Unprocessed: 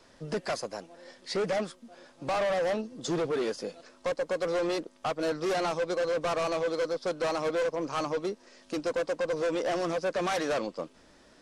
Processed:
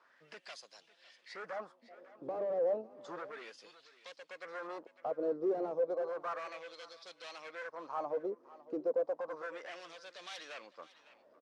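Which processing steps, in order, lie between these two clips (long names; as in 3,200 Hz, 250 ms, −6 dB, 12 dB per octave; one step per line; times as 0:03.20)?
auto-filter band-pass sine 0.32 Hz 400–3,600 Hz
single-tap delay 554 ms −19.5 dB
dynamic equaliser 2,800 Hz, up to −6 dB, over −57 dBFS, Q 0.88
level −1 dB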